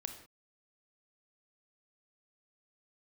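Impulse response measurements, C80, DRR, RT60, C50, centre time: 11.0 dB, 6.0 dB, non-exponential decay, 8.0 dB, 15 ms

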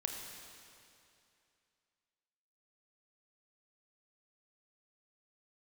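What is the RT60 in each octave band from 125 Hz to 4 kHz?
2.6, 2.5, 2.6, 2.6, 2.6, 2.5 seconds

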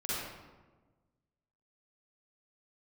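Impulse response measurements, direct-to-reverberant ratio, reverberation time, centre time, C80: −10.0 dB, 1.3 s, 112 ms, −1.0 dB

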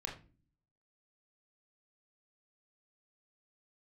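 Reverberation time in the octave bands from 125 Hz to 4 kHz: 0.80, 0.75, 0.40, 0.30, 0.30, 0.25 seconds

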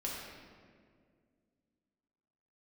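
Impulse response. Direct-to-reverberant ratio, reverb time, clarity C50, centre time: −5.0 dB, 2.0 s, 0.0 dB, 96 ms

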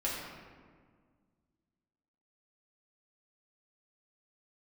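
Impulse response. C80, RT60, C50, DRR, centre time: 2.0 dB, 1.7 s, 0.0 dB, −6.5 dB, 89 ms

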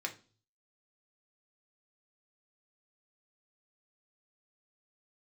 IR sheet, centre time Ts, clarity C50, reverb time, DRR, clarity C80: 9 ms, 14.5 dB, 0.40 s, 2.0 dB, 21.0 dB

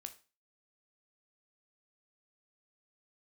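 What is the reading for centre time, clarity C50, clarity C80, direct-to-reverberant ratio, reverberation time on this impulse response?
7 ms, 14.5 dB, 20.5 dB, 7.0 dB, 0.35 s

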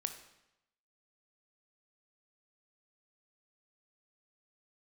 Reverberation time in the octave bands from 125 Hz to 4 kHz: 0.90, 0.85, 0.90, 0.90, 0.85, 0.80 seconds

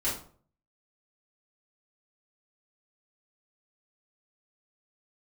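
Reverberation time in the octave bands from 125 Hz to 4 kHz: 0.65, 0.55, 0.50, 0.45, 0.35, 0.30 seconds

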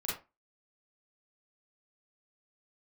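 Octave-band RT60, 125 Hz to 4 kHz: 0.25, 0.30, 0.25, 0.25, 0.25, 0.20 seconds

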